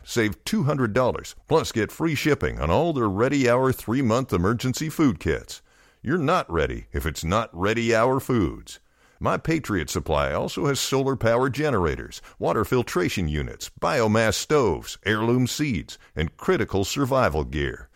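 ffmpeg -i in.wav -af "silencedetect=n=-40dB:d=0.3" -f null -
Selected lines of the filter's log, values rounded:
silence_start: 5.58
silence_end: 6.04 | silence_duration: 0.47
silence_start: 8.76
silence_end: 9.21 | silence_duration: 0.45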